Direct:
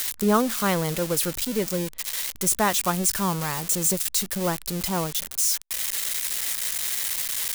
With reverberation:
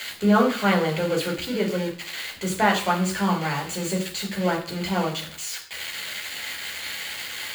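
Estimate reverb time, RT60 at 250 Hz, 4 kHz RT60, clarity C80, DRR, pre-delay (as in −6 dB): 0.50 s, 0.50 s, 0.50 s, 13.0 dB, −1.5 dB, 10 ms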